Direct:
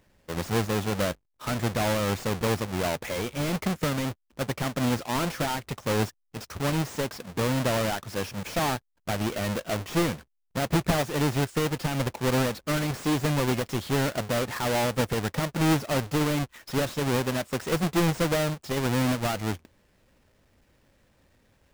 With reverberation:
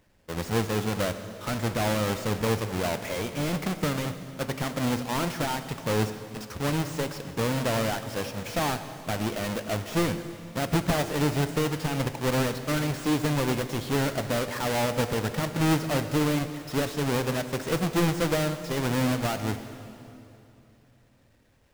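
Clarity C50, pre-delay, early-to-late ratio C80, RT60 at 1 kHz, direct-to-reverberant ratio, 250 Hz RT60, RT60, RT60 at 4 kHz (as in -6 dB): 10.0 dB, 4 ms, 11.0 dB, 2.7 s, 9.0 dB, 3.4 s, 2.8 s, 2.6 s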